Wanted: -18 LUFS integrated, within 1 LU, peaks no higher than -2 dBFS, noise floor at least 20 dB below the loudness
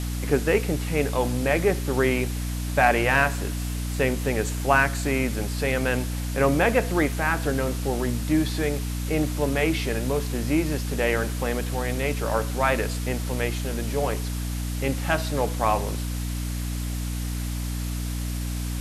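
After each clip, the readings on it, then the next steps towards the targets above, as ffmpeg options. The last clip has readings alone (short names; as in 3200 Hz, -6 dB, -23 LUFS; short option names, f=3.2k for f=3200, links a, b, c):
hum 60 Hz; harmonics up to 300 Hz; hum level -26 dBFS; noise floor -29 dBFS; noise floor target -45 dBFS; loudness -25.0 LUFS; peak -6.0 dBFS; loudness target -18.0 LUFS
-> -af "bandreject=f=60:t=h:w=6,bandreject=f=120:t=h:w=6,bandreject=f=180:t=h:w=6,bandreject=f=240:t=h:w=6,bandreject=f=300:t=h:w=6"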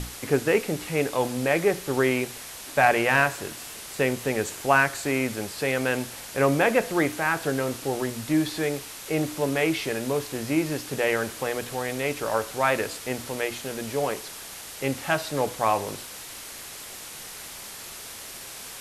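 hum none; noise floor -40 dBFS; noise floor target -46 dBFS
-> -af "afftdn=nr=6:nf=-40"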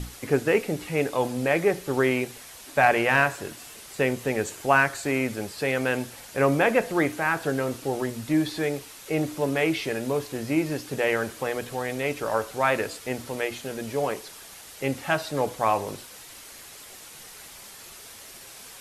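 noise floor -45 dBFS; noise floor target -46 dBFS
-> -af "afftdn=nr=6:nf=-45"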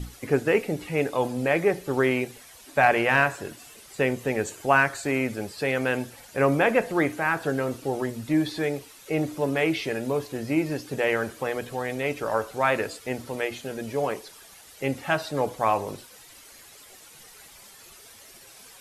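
noise floor -49 dBFS; loudness -26.0 LUFS; peak -6.5 dBFS; loudness target -18.0 LUFS
-> -af "volume=8dB,alimiter=limit=-2dB:level=0:latency=1"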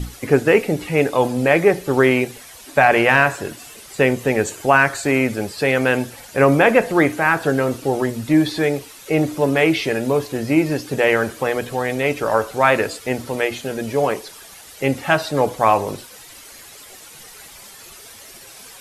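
loudness -18.5 LUFS; peak -2.0 dBFS; noise floor -41 dBFS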